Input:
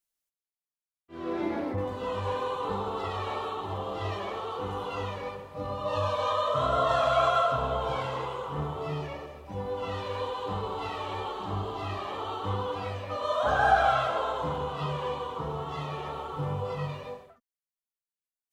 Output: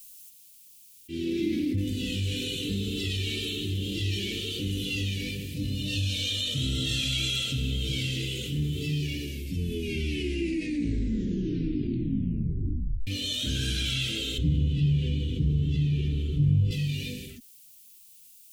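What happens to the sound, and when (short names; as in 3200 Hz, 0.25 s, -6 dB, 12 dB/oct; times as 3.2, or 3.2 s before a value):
9.17 tape stop 3.90 s
14.38–16.71 RIAA curve playback
whole clip: elliptic band-stop 310–2600 Hz, stop band 70 dB; high shelf 5600 Hz +11 dB; fast leveller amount 50%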